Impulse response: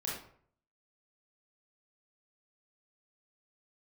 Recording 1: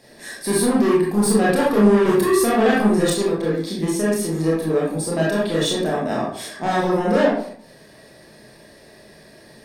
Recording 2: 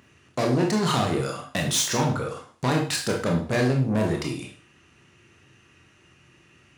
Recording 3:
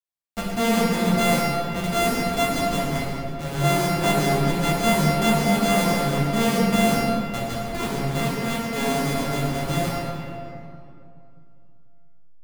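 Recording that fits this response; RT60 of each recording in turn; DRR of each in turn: 1; 0.55, 0.40, 2.6 s; -5.5, 0.5, -6.0 dB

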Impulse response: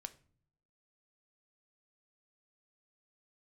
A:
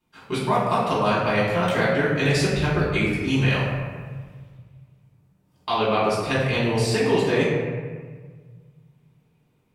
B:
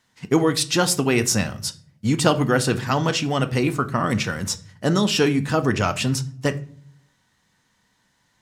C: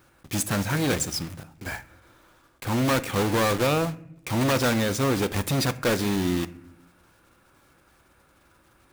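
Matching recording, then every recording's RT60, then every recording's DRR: B; 1.6 s, not exponential, not exponential; -9.5, 9.5, 12.5 dB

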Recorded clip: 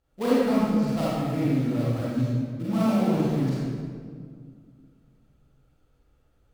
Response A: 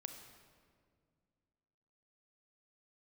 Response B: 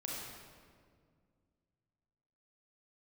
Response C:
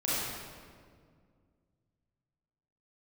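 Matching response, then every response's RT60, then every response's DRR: C; 2.1, 2.0, 2.0 s; 5.5, -4.0, -9.5 dB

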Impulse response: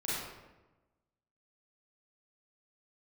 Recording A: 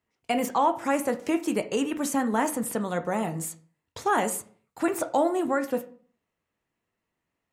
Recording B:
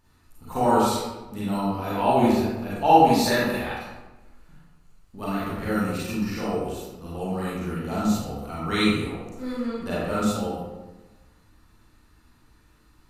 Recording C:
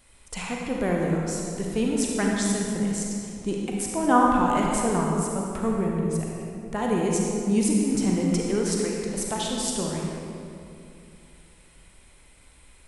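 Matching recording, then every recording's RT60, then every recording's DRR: B; 0.45, 1.1, 2.7 s; 7.5, -9.5, -2.0 dB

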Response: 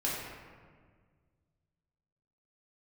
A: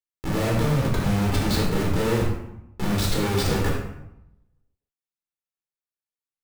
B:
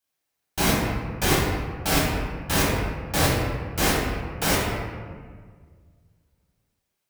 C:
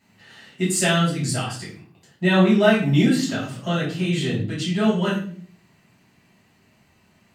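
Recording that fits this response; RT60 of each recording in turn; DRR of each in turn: B; 0.85, 1.7, 0.50 s; -3.0, -6.5, -8.0 dB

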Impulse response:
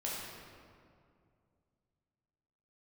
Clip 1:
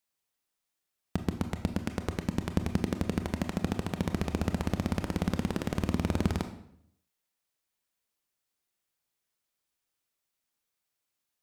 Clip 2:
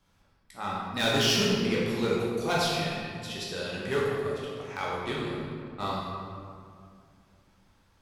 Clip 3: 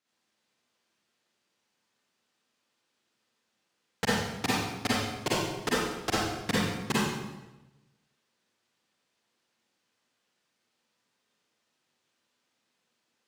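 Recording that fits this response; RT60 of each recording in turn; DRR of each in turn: 2; 0.70, 2.3, 1.0 s; 7.5, -6.0, -8.0 dB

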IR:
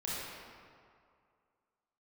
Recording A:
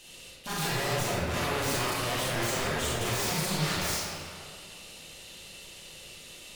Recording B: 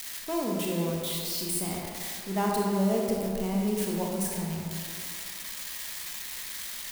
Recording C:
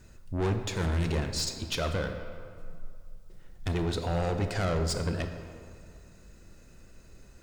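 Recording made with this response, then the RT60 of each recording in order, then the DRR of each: A; 2.3, 2.3, 2.2 s; -8.0, -2.0, 6.5 dB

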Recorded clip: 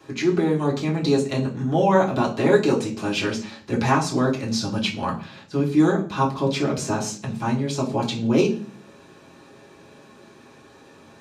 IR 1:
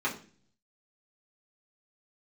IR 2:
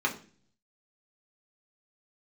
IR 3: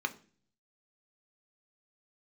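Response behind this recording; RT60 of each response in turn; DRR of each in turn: 1; 0.40, 0.40, 0.40 s; -6.0, -1.0, 6.5 dB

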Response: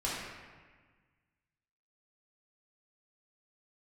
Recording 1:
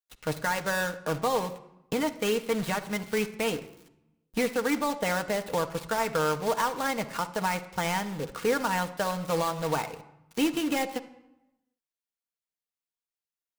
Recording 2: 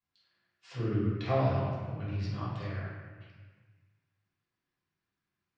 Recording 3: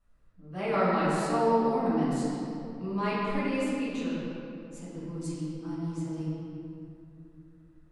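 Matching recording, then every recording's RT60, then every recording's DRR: 2; 0.85, 1.5, 2.9 s; 6.0, -8.0, -13.0 dB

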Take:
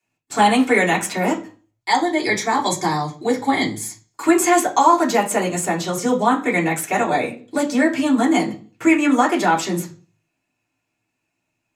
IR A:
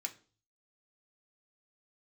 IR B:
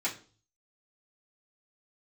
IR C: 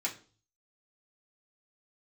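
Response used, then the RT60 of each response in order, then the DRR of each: C; 0.40, 0.40, 0.40 s; 2.5, -9.0, -4.5 dB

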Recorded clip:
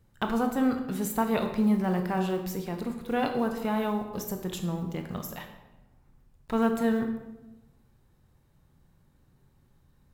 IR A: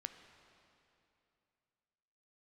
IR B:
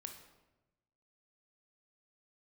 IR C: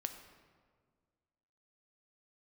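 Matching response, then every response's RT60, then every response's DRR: B; 2.8, 1.0, 1.7 s; 7.5, 4.5, 6.5 dB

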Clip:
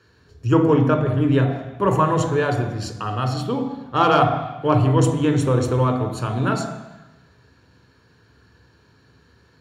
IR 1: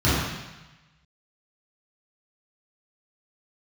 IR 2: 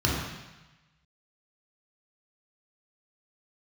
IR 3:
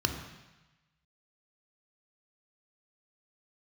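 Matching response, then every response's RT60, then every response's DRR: 3; 1.1, 1.1, 1.1 s; -12.0, -4.0, 5.0 dB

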